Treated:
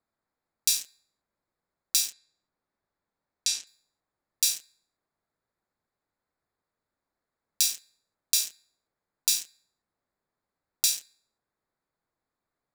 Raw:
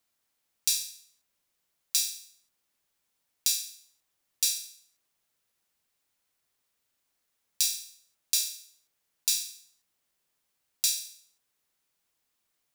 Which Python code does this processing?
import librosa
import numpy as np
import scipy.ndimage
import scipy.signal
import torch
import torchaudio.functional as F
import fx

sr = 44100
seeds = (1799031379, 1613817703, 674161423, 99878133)

y = fx.wiener(x, sr, points=15)
y = fx.lowpass(y, sr, hz=6900.0, slope=12, at=(2.12, 3.67))
y = y * librosa.db_to_amplitude(2.5)